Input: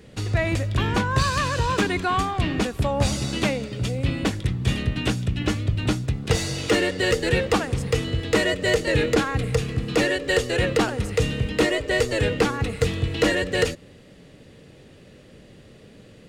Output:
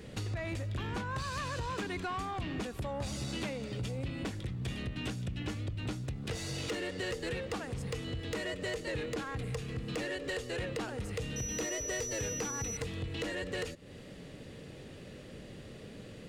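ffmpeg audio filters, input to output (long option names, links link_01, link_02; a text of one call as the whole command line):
ffmpeg -i in.wav -filter_complex "[0:a]acompressor=threshold=-33dB:ratio=5,asettb=1/sr,asplit=3[link_01][link_02][link_03];[link_01]atrim=end=11.364[link_04];[link_02]atrim=start=11.36:end=12.77,asetpts=PTS-STARTPTS,afade=type=in:duration=0.004:curve=qsin,afade=type=out:start_time=1.406:duration=0.004:curve=qsin,aeval=exprs='val(0)+0.0158*sin(2*PI*5900*n/s)':channel_layout=same[link_05];[link_03]atrim=start=12.766[link_06];[link_04][link_05]acrossfade=duration=0.004:curve1=hsin:curve2=qsin[link_07];[link_07][link_06]acrossfade=duration=0.004:curve1=qsin:curve2=hsin,asoftclip=type=tanh:threshold=-29.5dB" out.wav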